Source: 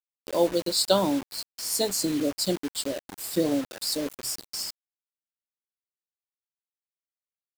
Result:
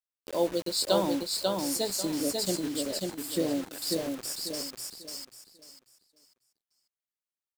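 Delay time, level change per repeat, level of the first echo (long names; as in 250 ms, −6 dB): 543 ms, −11.5 dB, −3.0 dB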